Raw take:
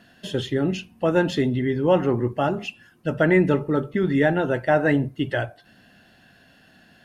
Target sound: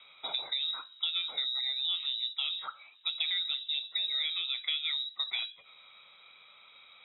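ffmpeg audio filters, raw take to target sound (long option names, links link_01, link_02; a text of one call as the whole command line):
ffmpeg -i in.wav -filter_complex "[0:a]lowpass=frequency=3400:width_type=q:width=0.5098,lowpass=frequency=3400:width_type=q:width=0.6013,lowpass=frequency=3400:width_type=q:width=0.9,lowpass=frequency=3400:width_type=q:width=2.563,afreqshift=-4000,acrossover=split=1400[link_01][link_02];[link_01]alimiter=level_in=10.5dB:limit=-24dB:level=0:latency=1:release=16,volume=-10.5dB[link_03];[link_03][link_02]amix=inputs=2:normalize=0,acompressor=threshold=-29dB:ratio=5,volume=-2dB" out.wav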